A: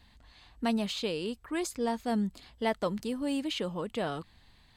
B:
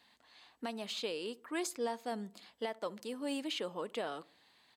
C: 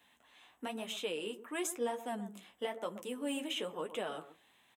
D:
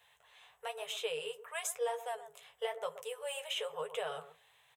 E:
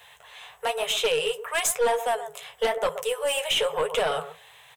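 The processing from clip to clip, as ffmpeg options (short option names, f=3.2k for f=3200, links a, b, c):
-filter_complex "[0:a]highpass=340,asplit=2[a][b];[b]adelay=67,lowpass=f=960:p=1,volume=-20.5dB,asplit=2[c][d];[d]adelay=67,lowpass=f=960:p=1,volume=0.5,asplit=2[e][f];[f]adelay=67,lowpass=f=960:p=1,volume=0.5,asplit=2[g][h];[h]adelay=67,lowpass=f=960:p=1,volume=0.5[i];[a][c][e][g][i]amix=inputs=5:normalize=0,alimiter=limit=-24dB:level=0:latency=1:release=437,volume=-2dB"
-filter_complex "[0:a]flanger=delay=10:depth=8:regen=-31:speed=1:shape=triangular,acrossover=split=100|1700[a][b][c];[b]aecho=1:1:125:0.251[d];[c]aexciter=amount=1.1:drive=0.9:freq=2.4k[e];[a][d][e]amix=inputs=3:normalize=0,volume=3.5dB"
-af "afftfilt=real='re*(1-between(b*sr/4096,170,400))':imag='im*(1-between(b*sr/4096,170,400))':win_size=4096:overlap=0.75,volume=1dB"
-af "aeval=exprs='0.0708*(cos(1*acos(clip(val(0)/0.0708,-1,1)))-cos(1*PI/2))+0.0158*(cos(5*acos(clip(val(0)/0.0708,-1,1)))-cos(5*PI/2))+0.01*(cos(6*acos(clip(val(0)/0.0708,-1,1)))-cos(6*PI/2))+0.00447*(cos(8*acos(clip(val(0)/0.0708,-1,1)))-cos(8*PI/2))':c=same,volume=9dB"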